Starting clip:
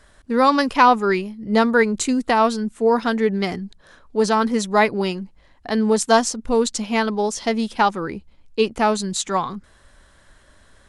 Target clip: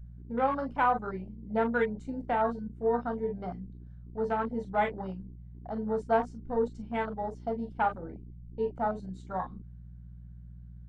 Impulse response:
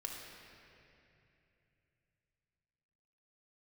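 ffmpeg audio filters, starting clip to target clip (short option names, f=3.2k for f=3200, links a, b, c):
-filter_complex "[0:a]lowpass=f=1.3k:p=1,lowshelf=f=200:g=-8.5,aeval=exprs='val(0)+0.0178*(sin(2*PI*60*n/s)+sin(2*PI*2*60*n/s)/2+sin(2*PI*3*60*n/s)/3+sin(2*PI*4*60*n/s)/4+sin(2*PI*5*60*n/s)/5)':c=same[a];[1:a]atrim=start_sample=2205,atrim=end_sample=3528,asetrate=70560,aresample=44100[b];[a][b]afir=irnorm=-1:irlink=0,afwtdn=0.02,volume=-2dB"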